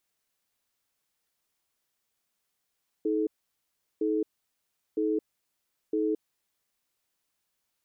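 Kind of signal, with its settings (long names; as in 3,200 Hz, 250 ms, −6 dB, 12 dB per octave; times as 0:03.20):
tone pair in a cadence 317 Hz, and 431 Hz, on 0.22 s, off 0.74 s, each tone −27 dBFS 3.42 s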